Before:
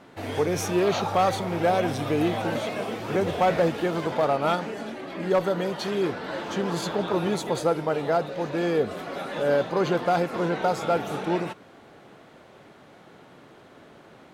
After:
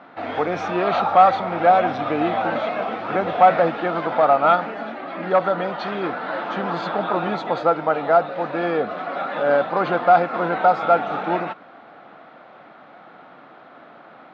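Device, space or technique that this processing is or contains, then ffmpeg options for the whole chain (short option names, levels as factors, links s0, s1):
kitchen radio: -af "highpass=220,equalizer=f=400:t=q:w=4:g=-8,equalizer=f=730:t=q:w=4:g=7,equalizer=f=1300:t=q:w=4:g=8,equalizer=f=3000:t=q:w=4:g=-4,lowpass=f=3600:w=0.5412,lowpass=f=3600:w=1.3066,volume=1.58"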